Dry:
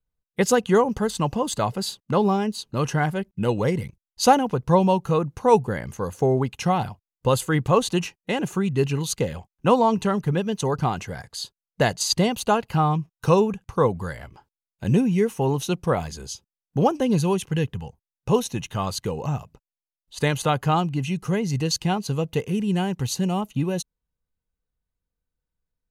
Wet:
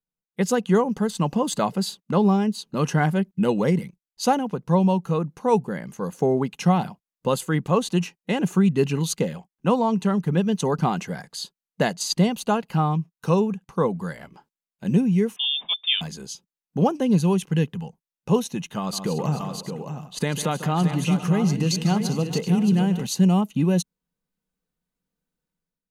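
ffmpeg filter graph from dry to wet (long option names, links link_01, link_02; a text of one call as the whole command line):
ffmpeg -i in.wav -filter_complex "[0:a]asettb=1/sr,asplit=3[link_01][link_02][link_03];[link_01]atrim=end=15.364[link_04];[link_02]atrim=start=15.36:end=16.01,asetpts=PTS-STARTPTS,afade=type=in:duration=0.004:curve=qsin,afade=type=out:start_time=0.646:duration=0.004:curve=qsin,highshelf=frequency=2800:gain=-7.5,lowpass=frequency=3100:width_type=q:width=0.5098,lowpass=frequency=3100:width_type=q:width=0.6013,lowpass=frequency=3100:width_type=q:width=0.9,lowpass=frequency=3100:width_type=q:width=2.563,afreqshift=-3700[link_05];[link_03]atrim=start=16.006[link_06];[link_04][link_05]acrossfade=duration=0.004:curve1=hsin:curve2=qsin[link_07];[link_07][link_06]acrossfade=duration=0.004:curve1=qsin:curve2=hsin,asettb=1/sr,asplit=3[link_08][link_09][link_10];[link_08]atrim=end=18.784[link_11];[link_09]atrim=start=18.78:end=23.06,asetpts=PTS-STARTPTS,afade=type=in:duration=0.004:curve=qsin,afade=type=out:start_time=4.276:duration=0.004:curve=qsin,acompressor=threshold=-25dB:ratio=3:attack=3.2:release=140:knee=1:detection=peak,aecho=1:1:148|200|407|622|720:0.224|0.126|0.133|0.398|0.126,atrim=end_sample=188748[link_12];[link_10]atrim=start=23.056[link_13];[link_11][link_12]acrossfade=duration=0.004:curve1=hsin:curve2=qsin[link_14];[link_14][link_13]acrossfade=duration=0.004:curve1=qsin:curve2=hsin,lowshelf=frequency=130:width_type=q:width=3:gain=-10,dynaudnorm=framelen=130:gausssize=7:maxgain=11.5dB,volume=-7.5dB" out.wav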